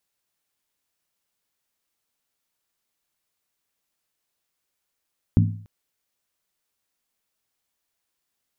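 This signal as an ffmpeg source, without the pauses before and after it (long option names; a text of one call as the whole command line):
ffmpeg -f lavfi -i "aevalsrc='0.251*pow(10,-3*t/0.53)*sin(2*PI*104*t)+0.168*pow(10,-3*t/0.42)*sin(2*PI*165.8*t)+0.112*pow(10,-3*t/0.363)*sin(2*PI*222.1*t)+0.075*pow(10,-3*t/0.35)*sin(2*PI*238.8*t)+0.0501*pow(10,-3*t/0.325)*sin(2*PI*275.9*t)':duration=0.29:sample_rate=44100" out.wav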